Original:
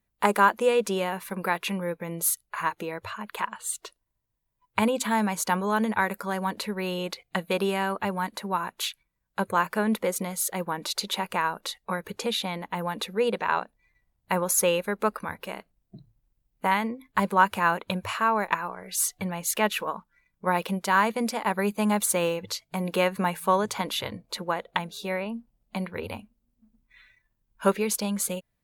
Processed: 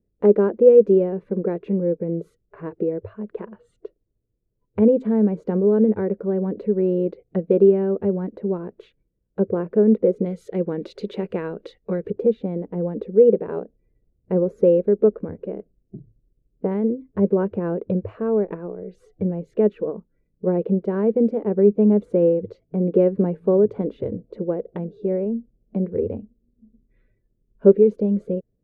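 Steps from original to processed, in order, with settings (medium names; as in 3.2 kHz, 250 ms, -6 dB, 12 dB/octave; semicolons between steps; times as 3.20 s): low-pass 1.1 kHz 12 dB/octave, from 10.26 s 2.4 kHz, from 12.10 s 1 kHz; resonant low shelf 640 Hz +13.5 dB, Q 3; trim -6.5 dB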